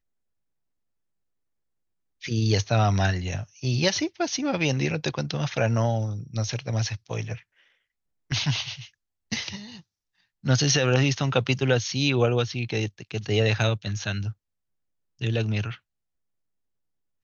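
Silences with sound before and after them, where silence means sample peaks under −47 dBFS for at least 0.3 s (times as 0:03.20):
0:07.41–0:08.30
0:08.89–0:09.32
0:09.81–0:10.44
0:14.33–0:15.19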